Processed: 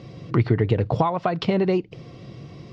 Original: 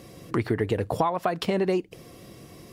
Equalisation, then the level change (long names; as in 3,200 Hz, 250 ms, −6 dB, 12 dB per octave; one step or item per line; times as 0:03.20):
low-pass filter 5,000 Hz 24 dB per octave
parametric band 130 Hz +10 dB 0.86 octaves
notch filter 1,700 Hz, Q 12
+2.0 dB